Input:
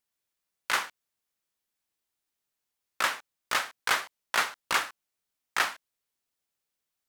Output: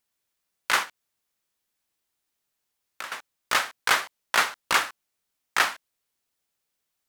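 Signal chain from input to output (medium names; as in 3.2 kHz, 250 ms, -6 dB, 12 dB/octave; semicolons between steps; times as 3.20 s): 0.83–3.12 s: compression 4:1, threshold -42 dBFS, peak gain reduction 17 dB; trim +4.5 dB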